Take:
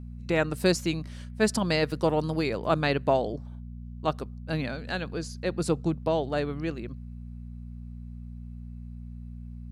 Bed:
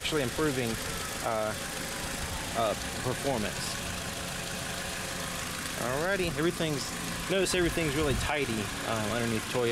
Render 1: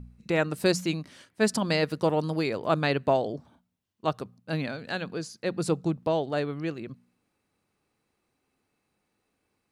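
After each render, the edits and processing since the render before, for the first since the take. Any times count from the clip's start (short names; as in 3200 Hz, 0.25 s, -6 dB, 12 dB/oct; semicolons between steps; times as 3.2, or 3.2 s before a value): de-hum 60 Hz, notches 4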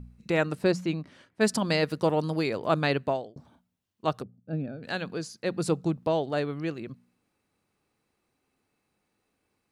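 0.55–1.41 LPF 1900 Hz 6 dB/oct; 2.95–3.36 fade out; 4.22–4.83 running mean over 43 samples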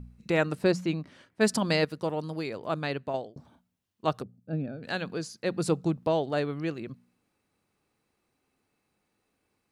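1.85–3.14 gain -6 dB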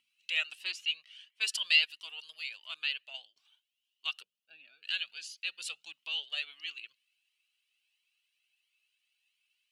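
resonant high-pass 2900 Hz, resonance Q 8.4; cascading flanger rising 1.5 Hz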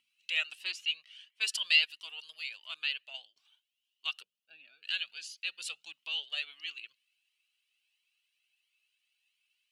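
nothing audible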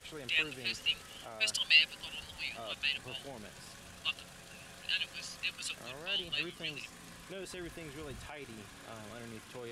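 add bed -17 dB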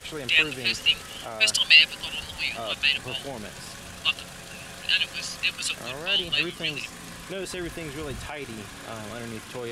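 gain +11 dB; limiter -3 dBFS, peak gain reduction 2.5 dB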